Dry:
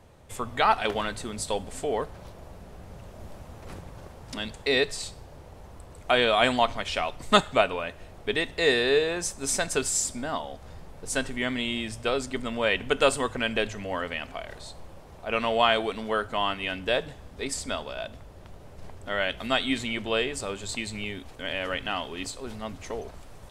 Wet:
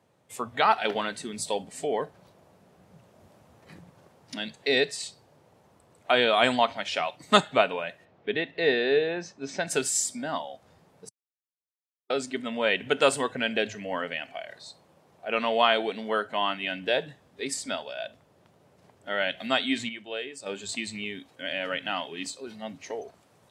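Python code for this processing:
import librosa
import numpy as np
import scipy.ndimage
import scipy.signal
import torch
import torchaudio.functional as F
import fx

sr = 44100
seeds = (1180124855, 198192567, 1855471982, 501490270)

y = fx.air_absorb(x, sr, metres=200.0, at=(8.04, 9.66), fade=0.02)
y = fx.edit(y, sr, fx.silence(start_s=11.09, length_s=1.01),
    fx.clip_gain(start_s=19.89, length_s=0.57, db=-7.5), tone=tone)
y = scipy.signal.sosfilt(scipy.signal.butter(4, 120.0, 'highpass', fs=sr, output='sos'), y)
y = fx.noise_reduce_blind(y, sr, reduce_db=10)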